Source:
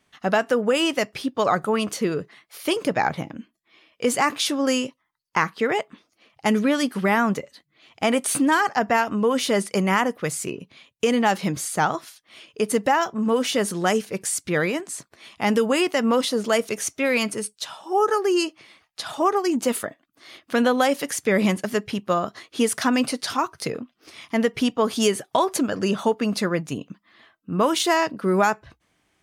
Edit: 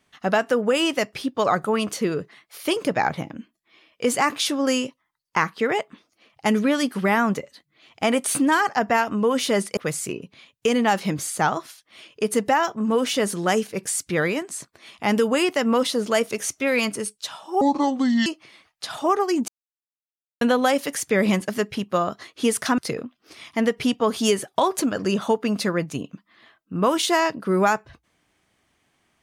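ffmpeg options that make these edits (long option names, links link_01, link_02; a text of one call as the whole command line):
ffmpeg -i in.wav -filter_complex "[0:a]asplit=7[link_01][link_02][link_03][link_04][link_05][link_06][link_07];[link_01]atrim=end=9.772[link_08];[link_02]atrim=start=10.148:end=17.994[link_09];[link_03]atrim=start=17.99:end=18.42,asetpts=PTS-STARTPTS,asetrate=29106,aresample=44100[link_10];[link_04]atrim=start=18.416:end=19.64,asetpts=PTS-STARTPTS,afade=type=out:start_time=1.22:duration=0.004:curve=hsin[link_11];[link_05]atrim=start=19.64:end=20.57,asetpts=PTS-STARTPTS,volume=0[link_12];[link_06]atrim=start=20.57:end=22.942,asetpts=PTS-STARTPTS,afade=type=in:duration=0.004:curve=hsin[link_13];[link_07]atrim=start=23.548[link_14];[link_08][link_09]acrossfade=duration=0.004:curve1=hsin:curve2=hsin[link_15];[link_15][link_10]acrossfade=duration=0.004:curve1=hsin:curve2=hsin[link_16];[link_11][link_12][link_13]concat=n=3:v=0:a=1[link_17];[link_16][link_17]acrossfade=duration=0.004:curve1=hsin:curve2=hsin[link_18];[link_18][link_14]acrossfade=duration=0.004:curve1=hsin:curve2=hsin" out.wav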